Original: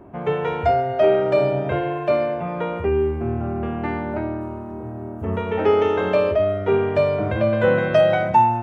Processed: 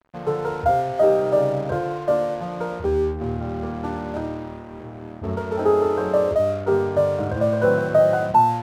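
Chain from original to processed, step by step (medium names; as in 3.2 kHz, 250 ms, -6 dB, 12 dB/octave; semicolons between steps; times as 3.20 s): elliptic low-pass 1.5 kHz; crossover distortion -38.5 dBFS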